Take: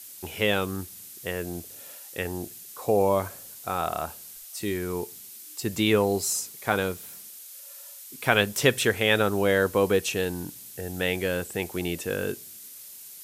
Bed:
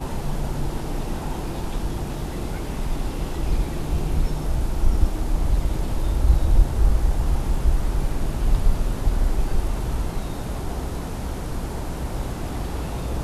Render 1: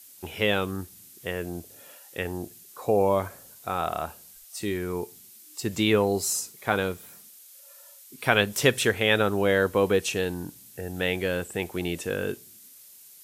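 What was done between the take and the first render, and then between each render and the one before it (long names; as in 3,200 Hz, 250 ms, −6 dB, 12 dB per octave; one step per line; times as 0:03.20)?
noise reduction from a noise print 6 dB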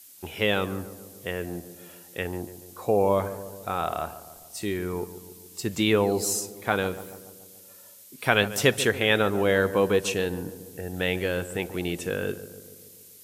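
feedback echo with a low-pass in the loop 143 ms, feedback 64%, low-pass 1,300 Hz, level −13 dB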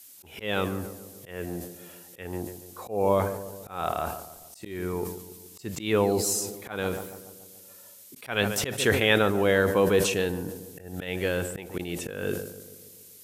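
volume swells 199 ms
level that may fall only so fast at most 69 dB per second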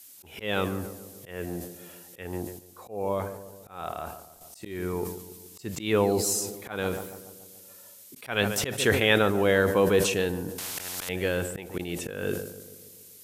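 0:02.59–0:04.41: clip gain −6 dB
0:10.58–0:11.09: every bin compressed towards the loudest bin 10 to 1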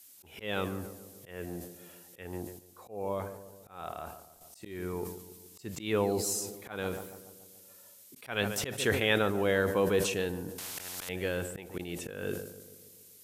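level −5.5 dB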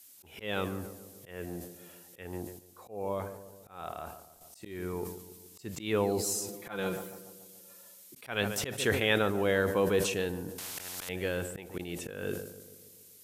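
0:06.48–0:08.15: comb filter 5.8 ms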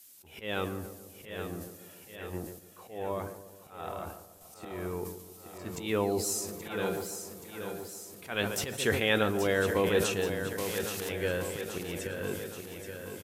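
double-tracking delay 13 ms −12.5 dB
on a send: repeating echo 827 ms, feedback 59%, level −8.5 dB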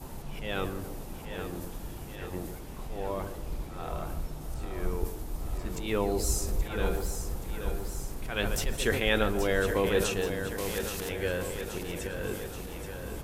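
mix in bed −14 dB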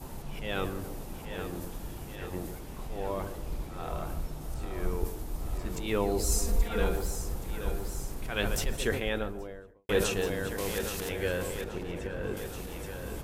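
0:06.31–0:06.84: comb filter 4.3 ms, depth 75%
0:08.54–0:09.89: fade out and dull
0:11.64–0:12.37: low-pass filter 1,900 Hz 6 dB per octave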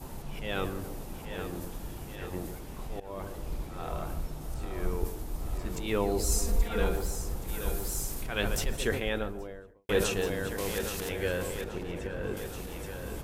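0:03.00–0:03.50: fade in equal-power, from −18 dB
0:07.47–0:08.22: high-shelf EQ 6,200 Hz → 3,500 Hz +11 dB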